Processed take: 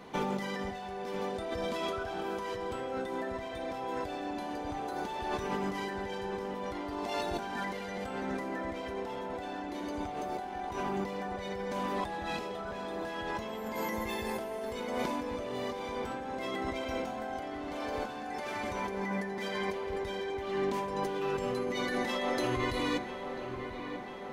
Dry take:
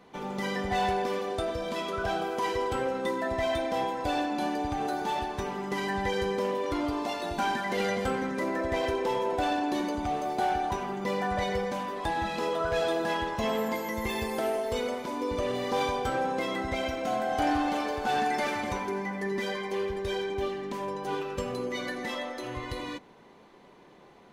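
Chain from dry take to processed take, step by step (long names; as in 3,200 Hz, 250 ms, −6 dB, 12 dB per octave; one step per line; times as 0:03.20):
compressor whose output falls as the input rises −37 dBFS, ratio −1
delay with a low-pass on its return 992 ms, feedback 65%, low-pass 2,700 Hz, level −9.5 dB
on a send at −13 dB: convolution reverb RT60 5.1 s, pre-delay 48 ms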